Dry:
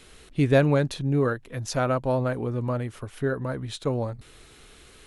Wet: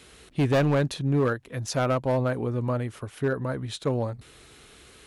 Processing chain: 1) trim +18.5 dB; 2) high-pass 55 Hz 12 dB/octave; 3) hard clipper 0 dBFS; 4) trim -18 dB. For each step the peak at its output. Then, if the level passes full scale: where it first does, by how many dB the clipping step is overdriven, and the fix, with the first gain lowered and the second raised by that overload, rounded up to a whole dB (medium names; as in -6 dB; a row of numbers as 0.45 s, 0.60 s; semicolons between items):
+9.5 dBFS, +9.5 dBFS, 0.0 dBFS, -18.0 dBFS; step 1, 9.5 dB; step 1 +8.5 dB, step 4 -8 dB